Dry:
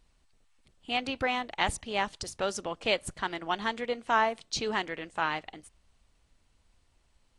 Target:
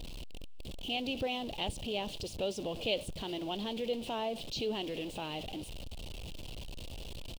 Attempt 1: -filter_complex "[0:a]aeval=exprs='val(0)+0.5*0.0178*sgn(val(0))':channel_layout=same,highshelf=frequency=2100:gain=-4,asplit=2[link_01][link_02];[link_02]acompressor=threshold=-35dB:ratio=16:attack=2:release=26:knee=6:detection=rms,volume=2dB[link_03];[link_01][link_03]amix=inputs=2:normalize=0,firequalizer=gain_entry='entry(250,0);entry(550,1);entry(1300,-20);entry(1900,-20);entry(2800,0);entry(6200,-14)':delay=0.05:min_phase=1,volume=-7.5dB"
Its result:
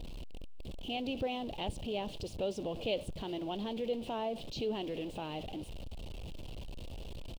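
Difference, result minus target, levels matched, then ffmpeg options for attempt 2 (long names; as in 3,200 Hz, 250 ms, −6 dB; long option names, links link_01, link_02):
4,000 Hz band −4.0 dB
-filter_complex "[0:a]aeval=exprs='val(0)+0.5*0.0178*sgn(val(0))':channel_layout=same,highshelf=frequency=2100:gain=5,asplit=2[link_01][link_02];[link_02]acompressor=threshold=-35dB:ratio=16:attack=2:release=26:knee=6:detection=rms,volume=2dB[link_03];[link_01][link_03]amix=inputs=2:normalize=0,firequalizer=gain_entry='entry(250,0);entry(550,1);entry(1300,-20);entry(1900,-20);entry(2800,0);entry(6200,-14)':delay=0.05:min_phase=1,volume=-7.5dB"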